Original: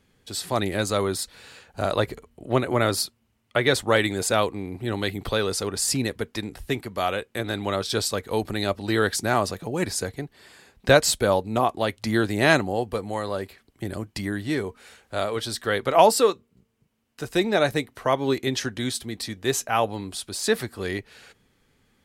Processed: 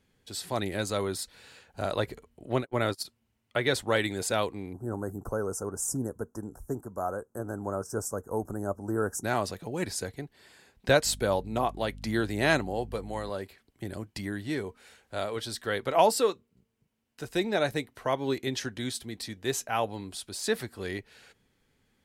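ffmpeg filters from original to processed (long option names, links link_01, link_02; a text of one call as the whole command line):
ffmpeg -i in.wav -filter_complex "[0:a]asplit=3[link_01][link_02][link_03];[link_01]afade=type=out:start_time=2.54:duration=0.02[link_04];[link_02]agate=range=-41dB:threshold=-25dB:ratio=16:release=100:detection=peak,afade=type=in:start_time=2.54:duration=0.02,afade=type=out:start_time=3.04:duration=0.02[link_05];[link_03]afade=type=in:start_time=3.04:duration=0.02[link_06];[link_04][link_05][link_06]amix=inputs=3:normalize=0,asettb=1/sr,asplit=3[link_07][link_08][link_09];[link_07]atrim=end=4.734[link_10];[link_08]atrim=start=4.73:end=9.24,asetpts=PTS-STARTPTS,afade=type=in:duration=0.004:curve=qsin,afade=type=out:start_time=4.506:duration=0.004:curve=qsin,asuperstop=centerf=3000:order=12:qfactor=0.67[link_11];[link_09]atrim=start=9.236[link_12];[link_10][link_11]acrossfade=duration=0.004:curve1=hsin:curve2=qsin[link_13];[link_13][link_12]acrossfade=duration=0.004:curve1=qsin:curve2=hsin,asettb=1/sr,asplit=3[link_14][link_15][link_16];[link_14]atrim=end=11.054[link_17];[link_15]atrim=start=11.05:end=13.3,asetpts=PTS-STARTPTS,afade=type=in:duration=0.004:curve=qsin,afade=type=out:start_time=2.246:duration=0.004:curve=qsin,aeval=exprs='val(0)+0.0141*(sin(2*PI*50*n/s)+sin(2*PI*2*50*n/s)/2+sin(2*PI*3*50*n/s)/3+sin(2*PI*4*50*n/s)/4+sin(2*PI*5*50*n/s)/5)':channel_layout=same[link_18];[link_16]atrim=start=13.296[link_19];[link_17][link_18]acrossfade=duration=0.004:curve1=hsin:curve2=qsin[link_20];[link_20][link_19]acrossfade=duration=0.004:curve1=qsin:curve2=hsin,bandreject=frequency=1200:width=15,volume=-6dB" out.wav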